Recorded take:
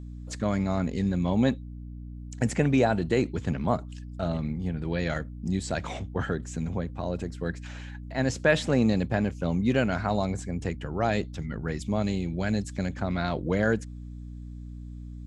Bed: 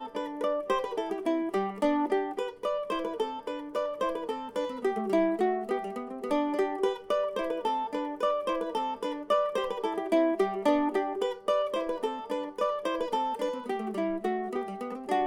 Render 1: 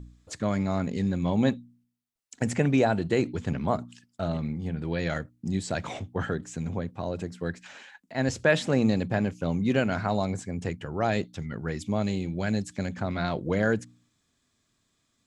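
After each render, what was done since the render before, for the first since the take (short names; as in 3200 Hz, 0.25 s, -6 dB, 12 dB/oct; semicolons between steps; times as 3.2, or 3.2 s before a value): de-hum 60 Hz, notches 5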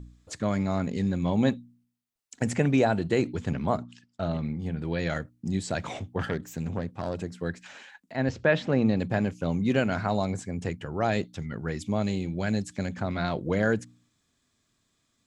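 3.79–4.59 LPF 5800 Hz; 6.19–7.18 self-modulated delay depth 0.24 ms; 8.16–9 air absorption 180 m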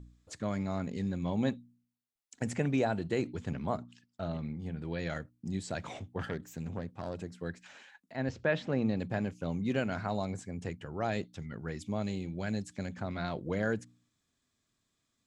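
gain -7 dB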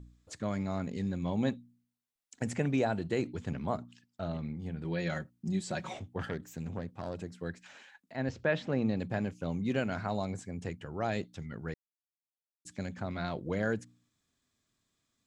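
4.84–5.95 comb 5.4 ms, depth 70%; 11.74–12.65 mute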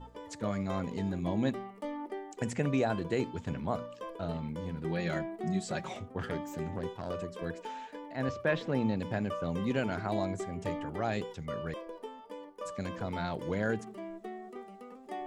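add bed -12.5 dB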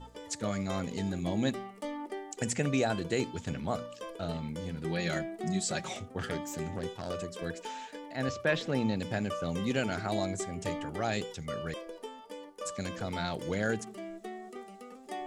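bell 7800 Hz +11 dB 2.4 oct; notch 1000 Hz, Q 10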